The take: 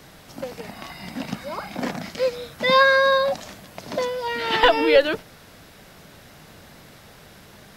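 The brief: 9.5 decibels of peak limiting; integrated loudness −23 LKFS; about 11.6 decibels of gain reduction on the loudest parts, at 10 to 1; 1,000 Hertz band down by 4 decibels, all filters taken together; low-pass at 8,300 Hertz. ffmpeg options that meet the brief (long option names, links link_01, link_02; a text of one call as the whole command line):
ffmpeg -i in.wav -af "lowpass=8300,equalizer=frequency=1000:width_type=o:gain=-4.5,acompressor=threshold=-23dB:ratio=10,volume=8.5dB,alimiter=limit=-12.5dB:level=0:latency=1" out.wav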